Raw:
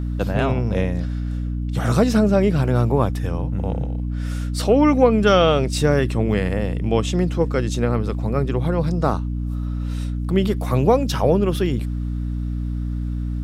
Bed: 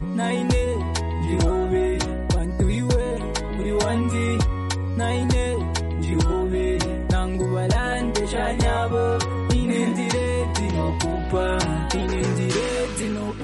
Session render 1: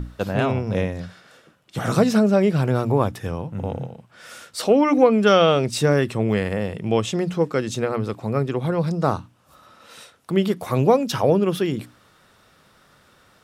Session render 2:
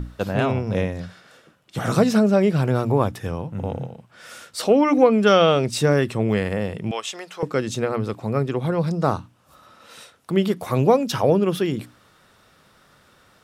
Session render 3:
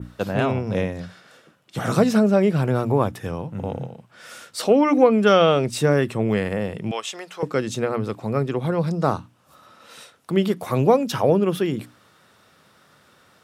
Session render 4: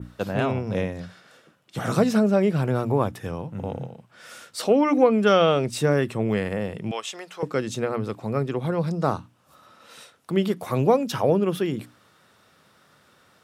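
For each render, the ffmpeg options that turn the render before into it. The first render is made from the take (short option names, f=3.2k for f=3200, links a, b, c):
-af "bandreject=f=60:t=h:w=6,bandreject=f=120:t=h:w=6,bandreject=f=180:t=h:w=6,bandreject=f=240:t=h:w=6,bandreject=f=300:t=h:w=6"
-filter_complex "[0:a]asettb=1/sr,asplit=3[a][b][c];[a]atrim=end=6.914[d];[b]atrim=start=6.91:end=7.43,asetpts=PTS-STARTPTS,afade=t=in:d=0.004:c=qsin,afade=t=out:st=0.516:d=0.004:c=qsin,highpass=860[e];[c]atrim=start=7.426[f];[d][e]acrossfade=d=0.004:c1=hsin:c2=qsin[g];[g][f]acrossfade=d=0.004:c1=qsin:c2=hsin"
-af "highpass=94,adynamicequalizer=threshold=0.00708:dfrequency=4900:dqfactor=1.1:tfrequency=4900:tqfactor=1.1:attack=5:release=100:ratio=0.375:range=2:mode=cutabove:tftype=bell"
-af "volume=-2.5dB"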